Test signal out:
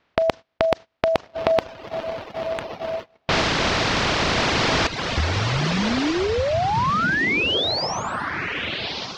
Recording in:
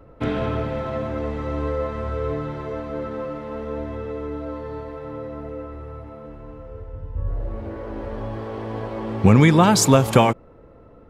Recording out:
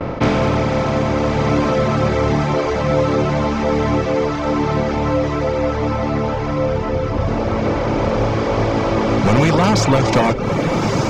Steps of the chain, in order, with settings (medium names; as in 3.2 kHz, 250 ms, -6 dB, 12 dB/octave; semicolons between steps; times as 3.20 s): spectral levelling over time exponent 0.4; low-pass 5.7 kHz 24 dB/octave; spring tank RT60 1.2 s, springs 38/48 ms, chirp 75 ms, DRR 18.5 dB; level-controlled noise filter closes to 2.6 kHz, open at -8.5 dBFS; overload inside the chain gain 6 dB; echo that smears into a reverb 1305 ms, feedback 41%, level -4.5 dB; saturation -3 dBFS; gate -28 dBFS, range -23 dB; reverb removal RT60 0.75 s